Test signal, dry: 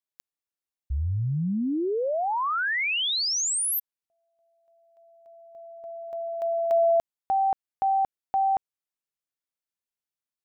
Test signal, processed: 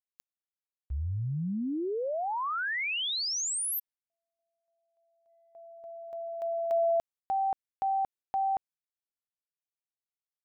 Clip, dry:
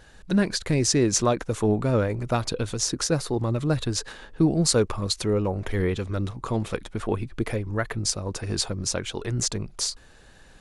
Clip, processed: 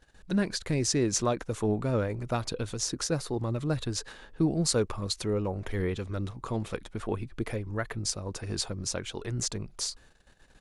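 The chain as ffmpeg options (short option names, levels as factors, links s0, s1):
-af "agate=range=0.282:threshold=0.00355:ratio=16:release=116:detection=rms,volume=0.531"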